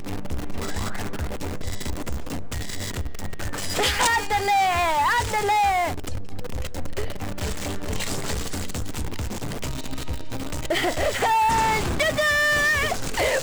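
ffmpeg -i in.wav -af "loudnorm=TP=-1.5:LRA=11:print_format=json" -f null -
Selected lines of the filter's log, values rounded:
"input_i" : "-23.7",
"input_tp" : "-10.7",
"input_lra" : "9.7",
"input_thresh" : "-33.9",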